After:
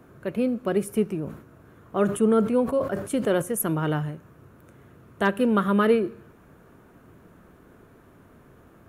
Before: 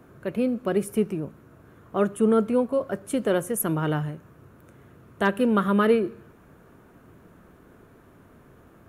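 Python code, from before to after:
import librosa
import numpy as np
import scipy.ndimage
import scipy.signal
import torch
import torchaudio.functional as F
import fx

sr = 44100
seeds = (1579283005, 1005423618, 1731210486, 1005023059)

y = fx.sustainer(x, sr, db_per_s=100.0, at=(1.09, 3.42))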